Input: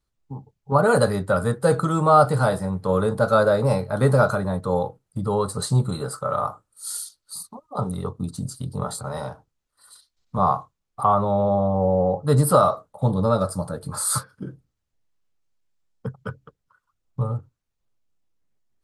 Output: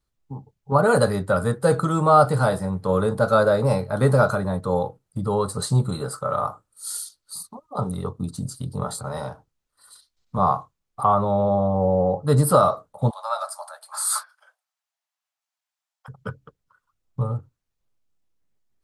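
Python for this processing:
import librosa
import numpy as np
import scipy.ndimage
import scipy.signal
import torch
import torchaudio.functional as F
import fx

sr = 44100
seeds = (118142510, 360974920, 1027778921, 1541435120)

y = fx.steep_highpass(x, sr, hz=640.0, slope=72, at=(13.09, 16.08), fade=0.02)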